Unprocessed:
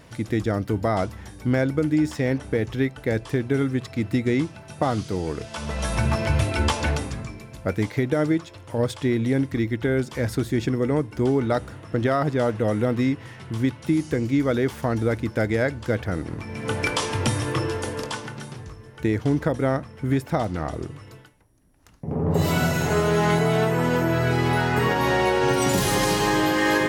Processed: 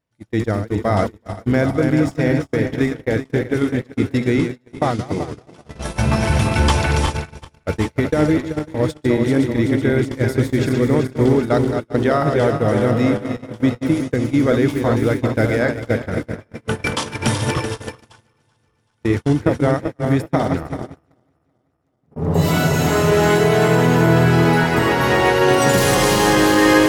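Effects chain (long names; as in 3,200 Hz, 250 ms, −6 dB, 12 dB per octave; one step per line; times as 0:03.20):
feedback delay that plays each chunk backwards 191 ms, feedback 79%, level −5.5 dB
noise gate −22 dBFS, range −36 dB
level +4 dB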